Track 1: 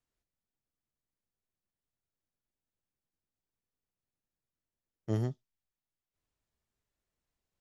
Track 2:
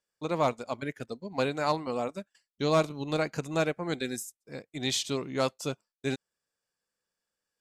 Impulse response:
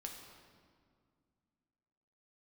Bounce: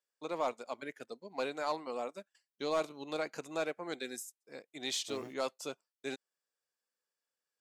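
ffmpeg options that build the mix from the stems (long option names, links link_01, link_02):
-filter_complex "[0:a]acrusher=bits=9:mix=0:aa=0.000001,volume=-8dB[link_01];[1:a]volume=-5.5dB[link_02];[link_01][link_02]amix=inputs=2:normalize=0,highpass=330,asoftclip=type=tanh:threshold=-22.5dB"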